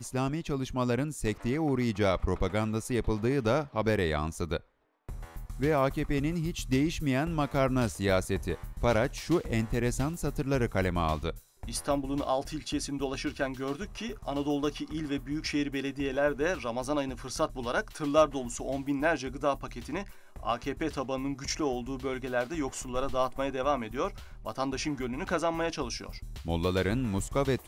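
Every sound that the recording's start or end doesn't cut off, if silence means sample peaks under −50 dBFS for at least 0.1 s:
0:05.09–0:11.43

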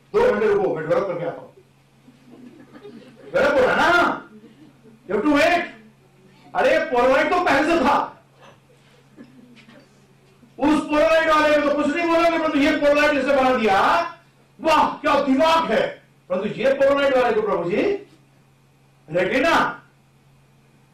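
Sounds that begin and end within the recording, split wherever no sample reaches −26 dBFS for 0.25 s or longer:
0:03.34–0:04.18
0:05.10–0:05.66
0:06.55–0:08.07
0:10.60–0:14.10
0:14.63–0:15.92
0:16.30–0:17.96
0:19.12–0:19.74

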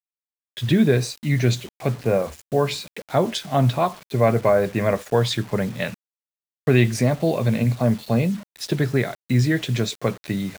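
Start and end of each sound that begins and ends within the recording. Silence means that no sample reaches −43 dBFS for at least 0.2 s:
0:00.57–0:05.94

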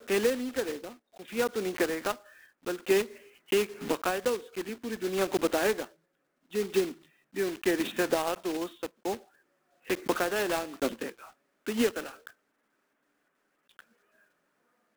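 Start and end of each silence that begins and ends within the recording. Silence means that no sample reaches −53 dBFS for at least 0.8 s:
0:12.31–0:13.69

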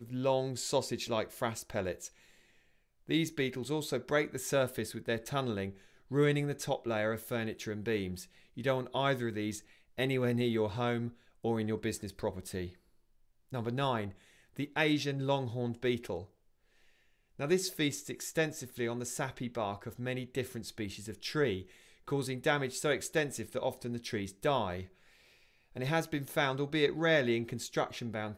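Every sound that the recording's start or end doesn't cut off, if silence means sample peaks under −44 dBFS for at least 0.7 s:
0:03.09–0:12.70
0:13.53–0:16.24
0:17.39–0:24.85

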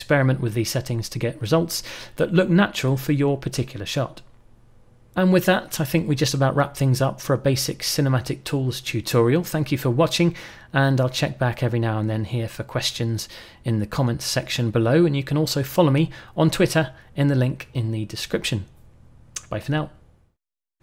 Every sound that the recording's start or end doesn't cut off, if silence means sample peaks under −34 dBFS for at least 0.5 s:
0:05.14–0:18.64
0:19.36–0:19.88

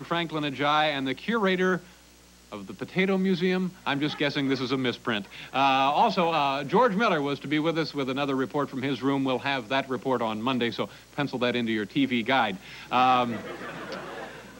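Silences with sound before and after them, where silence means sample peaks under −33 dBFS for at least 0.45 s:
0:01.78–0:02.52

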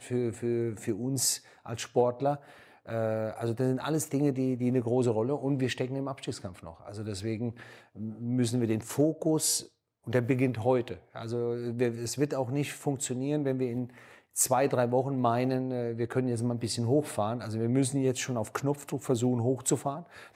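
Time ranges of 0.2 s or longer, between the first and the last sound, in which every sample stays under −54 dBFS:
0:09.68–0:10.04

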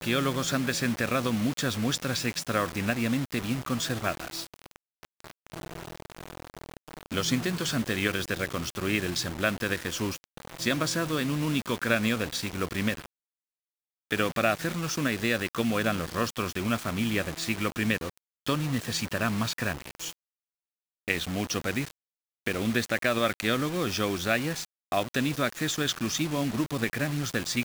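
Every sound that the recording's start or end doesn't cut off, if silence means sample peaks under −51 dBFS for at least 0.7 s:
0:14.11–0:20.13

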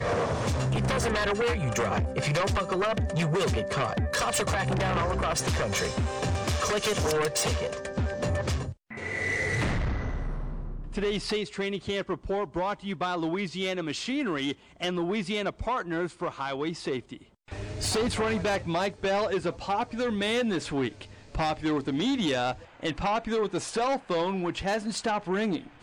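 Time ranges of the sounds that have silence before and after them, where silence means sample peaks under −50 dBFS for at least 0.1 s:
0:08.90–0:17.29

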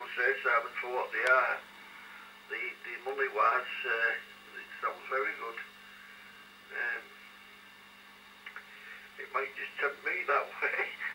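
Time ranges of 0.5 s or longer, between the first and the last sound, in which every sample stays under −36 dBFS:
0:01.59–0:02.51
0:05.62–0:06.72
0:06.98–0:08.47

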